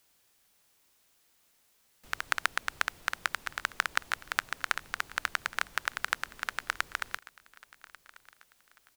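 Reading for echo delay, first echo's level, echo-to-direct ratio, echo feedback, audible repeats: 1142 ms, -21.0 dB, -20.5 dB, 38%, 2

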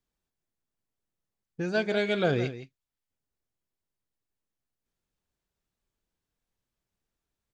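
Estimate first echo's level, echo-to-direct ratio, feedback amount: -13.0 dB, -13.0 dB, no regular repeats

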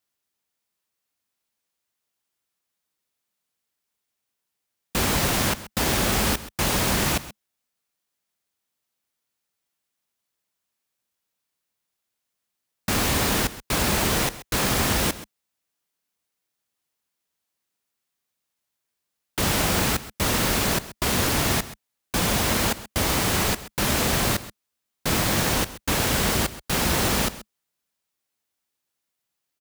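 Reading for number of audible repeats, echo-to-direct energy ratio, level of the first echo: 1, -16.0 dB, -16.0 dB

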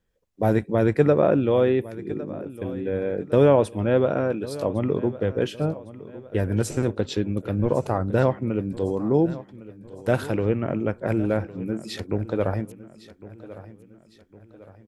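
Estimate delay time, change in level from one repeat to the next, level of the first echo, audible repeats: 1107 ms, -7.0 dB, -17.0 dB, 3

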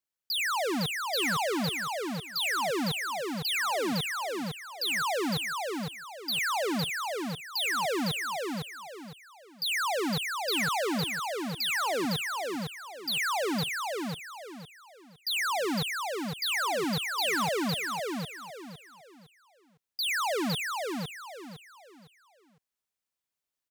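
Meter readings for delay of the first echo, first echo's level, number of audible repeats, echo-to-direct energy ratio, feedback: 508 ms, -4.0 dB, 4, -3.5 dB, 31%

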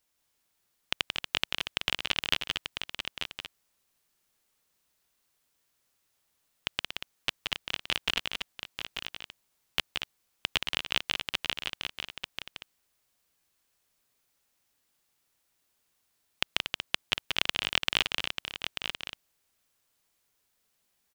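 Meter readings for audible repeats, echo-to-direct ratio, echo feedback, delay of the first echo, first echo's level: 5, -1.5 dB, no regular repeats, 176 ms, -5.0 dB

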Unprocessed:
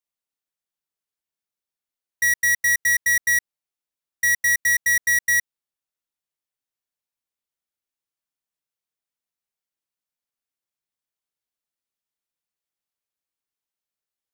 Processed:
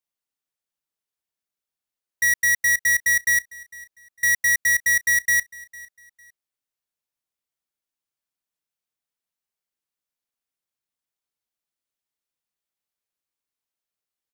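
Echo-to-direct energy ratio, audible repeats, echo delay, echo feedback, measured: -21.0 dB, 2, 453 ms, 29%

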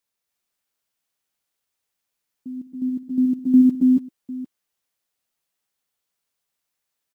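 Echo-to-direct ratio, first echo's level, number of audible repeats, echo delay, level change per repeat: -1.0 dB, -18.0 dB, 4, 56 ms, no regular repeats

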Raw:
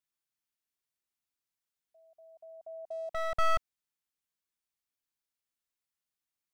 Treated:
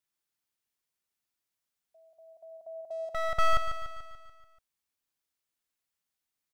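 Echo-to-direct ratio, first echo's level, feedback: -7.5 dB, -9.0 dB, 56%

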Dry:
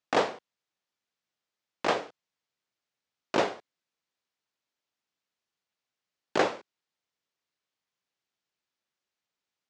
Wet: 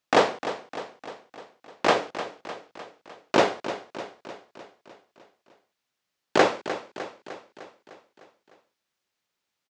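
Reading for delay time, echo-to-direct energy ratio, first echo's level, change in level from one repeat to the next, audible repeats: 303 ms, -10.0 dB, -12.0 dB, -4.5 dB, 6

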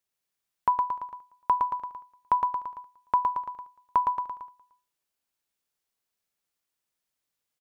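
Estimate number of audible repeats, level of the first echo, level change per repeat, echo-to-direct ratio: 4, -4.5 dB, -5.0 dB, -3.0 dB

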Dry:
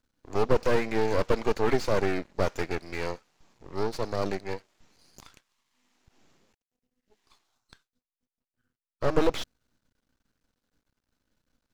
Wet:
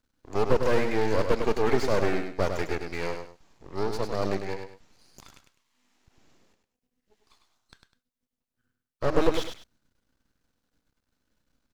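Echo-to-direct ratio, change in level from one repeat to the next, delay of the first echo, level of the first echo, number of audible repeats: -6.0 dB, -11.0 dB, 101 ms, -6.5 dB, 2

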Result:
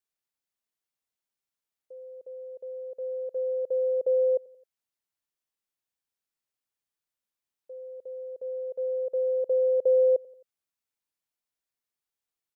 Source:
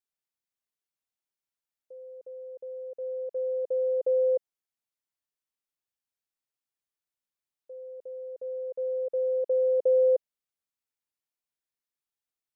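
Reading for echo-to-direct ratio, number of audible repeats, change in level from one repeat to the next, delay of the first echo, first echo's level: -21.5 dB, 3, -5.5 dB, 88 ms, -23.0 dB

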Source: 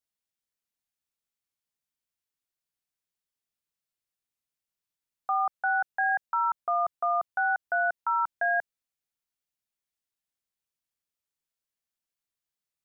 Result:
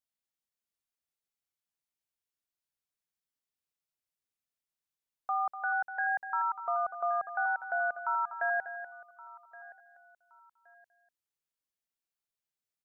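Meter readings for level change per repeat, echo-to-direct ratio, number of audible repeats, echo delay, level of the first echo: no regular repeats, -10.5 dB, 4, 245 ms, -11.0 dB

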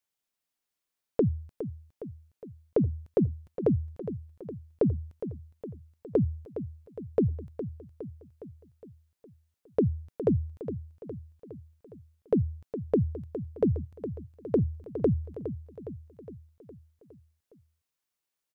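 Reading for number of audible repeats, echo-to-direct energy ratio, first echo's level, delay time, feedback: 5, -9.5 dB, -11.0 dB, 412 ms, 57%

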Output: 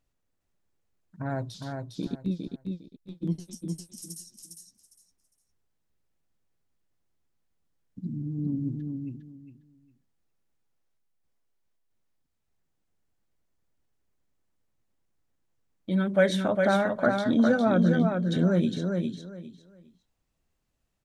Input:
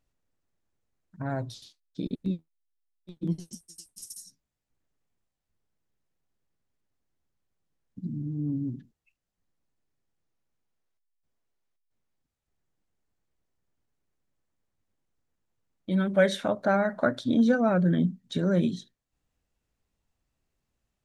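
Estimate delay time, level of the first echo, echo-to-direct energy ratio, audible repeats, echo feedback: 406 ms, -4.5 dB, -4.5 dB, 3, 22%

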